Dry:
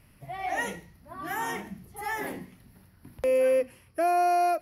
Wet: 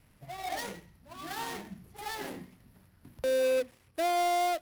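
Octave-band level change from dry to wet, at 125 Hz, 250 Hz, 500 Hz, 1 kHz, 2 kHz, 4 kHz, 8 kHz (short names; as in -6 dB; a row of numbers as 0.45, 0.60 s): -4.0, -4.5, -4.5, -5.0, -5.0, +5.5, +0.5 dB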